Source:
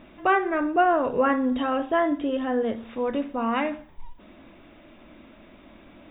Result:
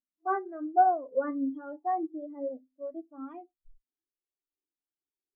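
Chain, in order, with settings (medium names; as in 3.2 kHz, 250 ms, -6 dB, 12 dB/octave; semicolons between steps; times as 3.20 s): gliding tape speed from 98% -> 130%; spectral contrast expander 2.5:1; trim -4 dB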